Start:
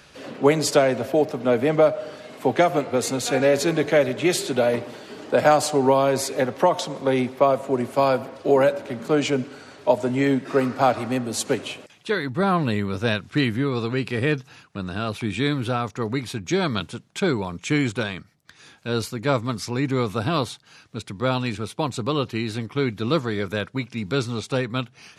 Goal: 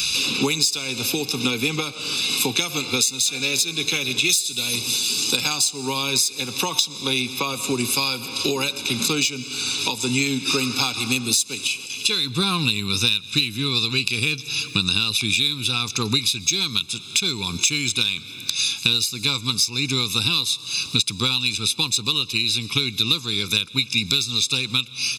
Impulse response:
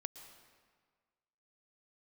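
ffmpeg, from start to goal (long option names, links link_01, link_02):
-filter_complex "[0:a]asettb=1/sr,asplit=3[link_01][link_02][link_03];[link_01]atrim=end=11.674[link_04];[link_02]atrim=start=11.67:end=12.19,asetpts=PTS-STARTPTS,afade=type=in:duration=0.004:curve=qsin,afade=type=out:start_time=0.516:duration=0.004:curve=qsin,bandreject=frequency=3700:width=10[link_05];[link_03]atrim=start=12.186[link_06];[link_04][link_05]acrossfade=duration=0.004:curve1=hsin:curve2=qsin[link_07];[link_07][link_06]acrossfade=duration=0.004:curve1=qsin:curve2=hsin,asplit=2[link_08][link_09];[link_09]adynamicsmooth=sensitivity=5:basefreq=5300,volume=-0.5dB[link_10];[link_08][link_10]amix=inputs=2:normalize=0,asettb=1/sr,asplit=3[link_11][link_12][link_13];[link_11]atrim=end=4.294[link_14];[link_12]atrim=start=4.29:end=5.37,asetpts=PTS-STARTPTS,afade=type=in:duration=0.004:curve=qsin,afade=type=out:start_time=1.076:duration=0.004:curve=qsin,bass=frequency=250:gain=4,treble=frequency=4000:gain=11[link_15];[link_13]atrim=start=5.366[link_16];[link_14][link_15]acrossfade=duration=0.004:curve1=hsin:curve2=qsin[link_17];[link_17][link_16]acrossfade=duration=0.004:curve1=qsin:curve2=hsin,asplit=2[link_18][link_19];[1:a]atrim=start_sample=2205[link_20];[link_19][link_20]afir=irnorm=-1:irlink=0,volume=-9dB[link_21];[link_18][link_21]amix=inputs=2:normalize=0,aexciter=amount=15.4:drive=6.8:freq=2600,acompressor=threshold=-21dB:ratio=16,aecho=1:1:0.8:0.98"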